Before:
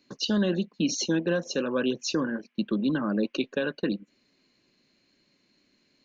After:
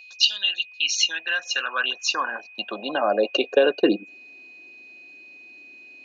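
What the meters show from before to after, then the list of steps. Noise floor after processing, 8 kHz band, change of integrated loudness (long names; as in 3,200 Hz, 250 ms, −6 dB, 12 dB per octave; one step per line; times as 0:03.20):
−46 dBFS, can't be measured, +5.5 dB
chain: high-pass filter sweep 3,400 Hz → 330 Hz, 0:00.29–0:04.04
steady tone 2,500 Hz −49 dBFS
hollow resonant body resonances 730/2,800 Hz, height 13 dB, ringing for 35 ms
level +5 dB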